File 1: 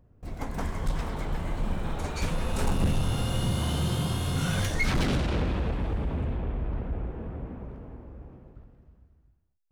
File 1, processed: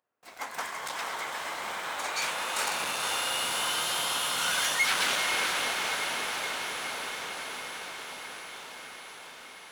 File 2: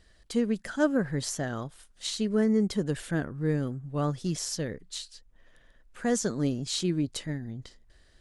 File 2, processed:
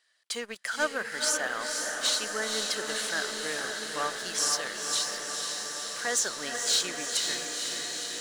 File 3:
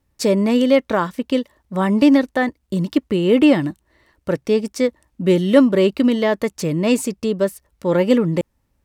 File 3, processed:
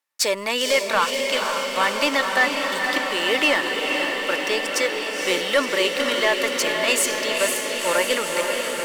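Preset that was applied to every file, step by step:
high-pass 1.1 kHz 12 dB/octave; waveshaping leveller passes 2; on a send: echo that smears into a reverb 500 ms, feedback 76%, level -4 dB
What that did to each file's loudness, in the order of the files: +1.0 LU, +1.0 LU, -2.5 LU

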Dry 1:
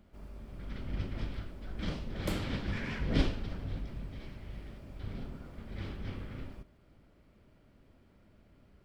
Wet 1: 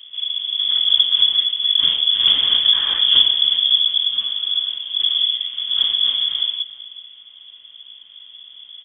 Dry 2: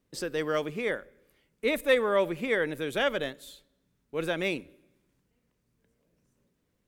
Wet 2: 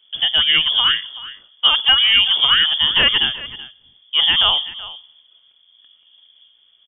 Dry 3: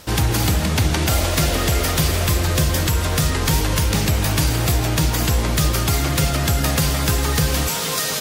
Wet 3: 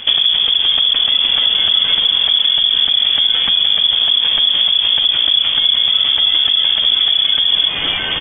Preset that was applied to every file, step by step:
octave divider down 1 oct, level -3 dB; bass shelf 270 Hz +9.5 dB; peak limiter -6.5 dBFS; compression 6:1, threshold -21 dBFS; delay 379 ms -17 dB; frequency inversion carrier 3.4 kHz; peak normalisation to -2 dBFS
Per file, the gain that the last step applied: +9.5 dB, +11.5 dB, +8.0 dB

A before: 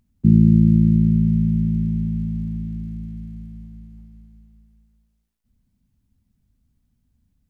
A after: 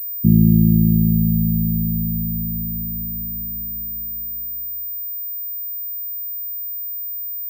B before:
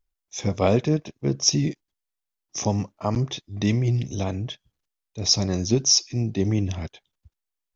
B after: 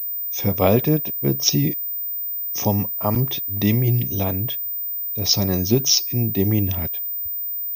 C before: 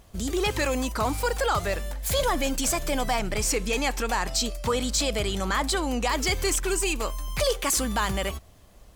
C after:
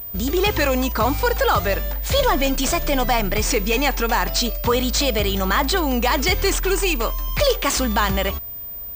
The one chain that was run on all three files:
class-D stage that switches slowly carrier 15 kHz; normalise loudness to -20 LUFS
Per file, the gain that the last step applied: 0.0 dB, +3.0 dB, +6.5 dB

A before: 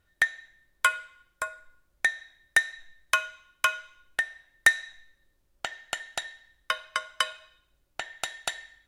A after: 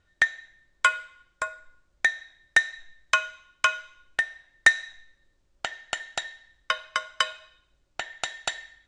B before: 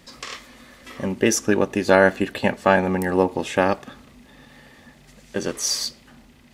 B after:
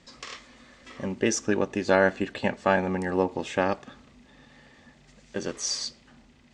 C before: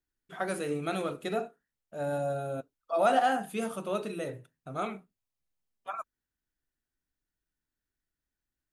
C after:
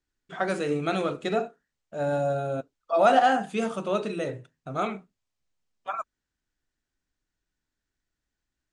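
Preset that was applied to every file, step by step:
steep low-pass 8.1 kHz 36 dB/octave; normalise loudness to -27 LUFS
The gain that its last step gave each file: +2.0 dB, -6.0 dB, +5.5 dB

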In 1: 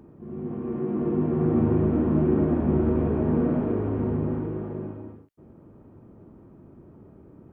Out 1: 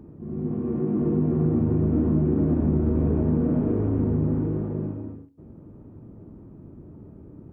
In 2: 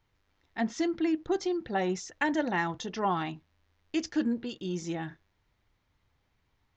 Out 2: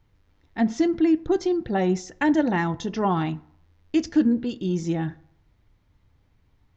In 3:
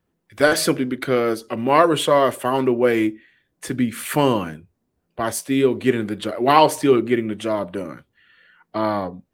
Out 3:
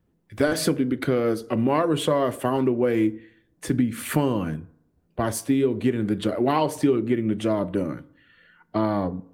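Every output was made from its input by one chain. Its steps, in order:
bass shelf 420 Hz +11 dB; compression 5:1, threshold -15 dBFS; FDN reverb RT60 0.69 s, low-frequency decay 0.95×, high-frequency decay 0.5×, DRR 16.5 dB; normalise loudness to -24 LUFS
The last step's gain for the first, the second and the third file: -4.0 dB, +1.5 dB, -3.5 dB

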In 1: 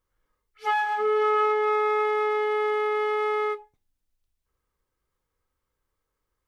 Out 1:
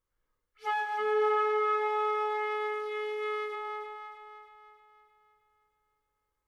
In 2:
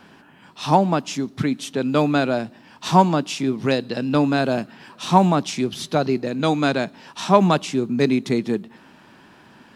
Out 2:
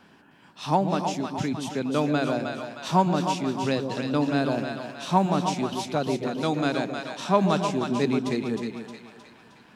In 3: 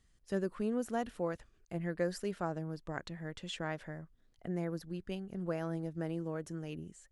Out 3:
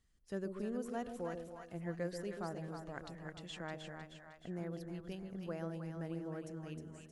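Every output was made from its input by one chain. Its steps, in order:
two-band feedback delay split 640 Hz, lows 135 ms, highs 311 ms, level -5.5 dB; trim -6.5 dB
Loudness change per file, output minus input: -6.0 LU, -5.5 LU, -5.0 LU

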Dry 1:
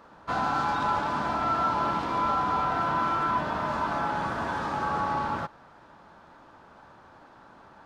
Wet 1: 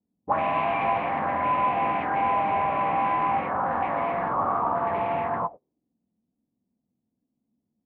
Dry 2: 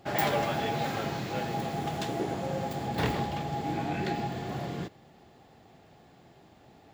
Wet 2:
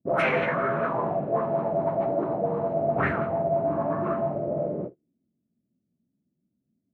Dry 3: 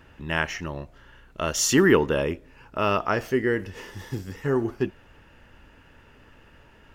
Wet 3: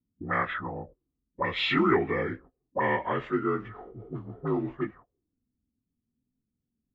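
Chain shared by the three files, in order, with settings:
frequency axis rescaled in octaves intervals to 83%; gate -45 dBFS, range -25 dB; touch-sensitive low-pass 230–2400 Hz up, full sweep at -25.5 dBFS; peak normalisation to -12 dBFS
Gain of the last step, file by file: +2.0 dB, +3.5 dB, -4.0 dB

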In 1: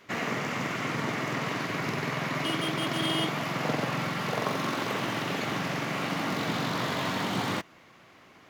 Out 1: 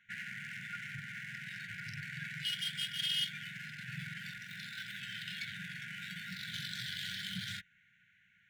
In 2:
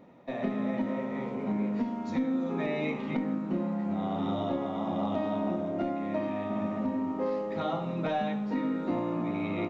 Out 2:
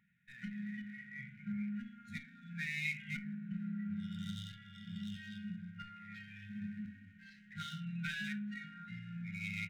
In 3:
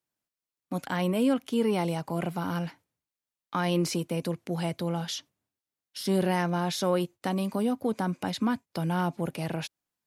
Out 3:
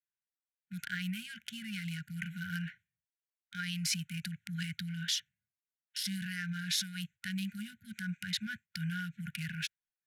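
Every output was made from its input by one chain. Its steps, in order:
local Wiener filter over 9 samples; peak limiter -22 dBFS; spectral noise reduction 10 dB; brick-wall FIR band-stop 220–1400 Hz; resonant low shelf 770 Hz -8 dB, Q 1.5; trim +3 dB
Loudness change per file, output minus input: -10.0 LU, -11.5 LU, -8.5 LU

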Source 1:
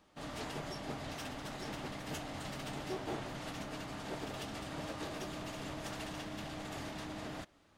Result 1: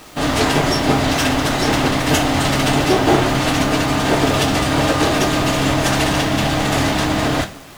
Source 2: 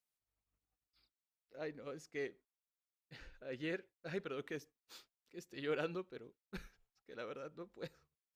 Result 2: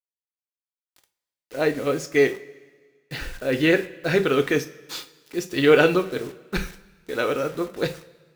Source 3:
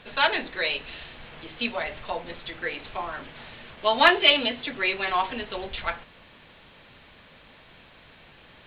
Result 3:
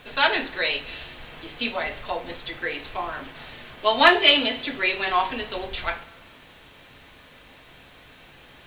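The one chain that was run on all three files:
bit crusher 11-bit; two-slope reverb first 0.29 s, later 1.6 s, from -18 dB, DRR 6.5 dB; peak normalisation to -2 dBFS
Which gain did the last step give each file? +25.0 dB, +22.0 dB, +1.5 dB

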